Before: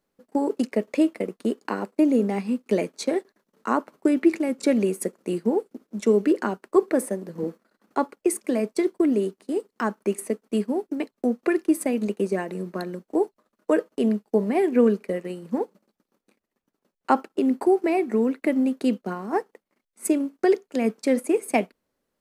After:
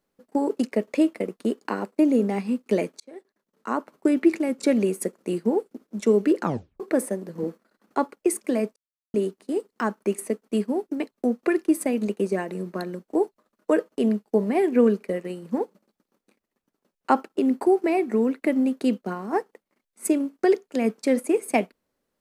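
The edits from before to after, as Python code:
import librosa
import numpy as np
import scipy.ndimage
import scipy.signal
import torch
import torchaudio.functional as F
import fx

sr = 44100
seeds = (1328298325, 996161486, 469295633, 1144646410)

y = fx.edit(x, sr, fx.fade_in_span(start_s=3.0, length_s=1.11),
    fx.tape_stop(start_s=6.41, length_s=0.39),
    fx.silence(start_s=8.76, length_s=0.38), tone=tone)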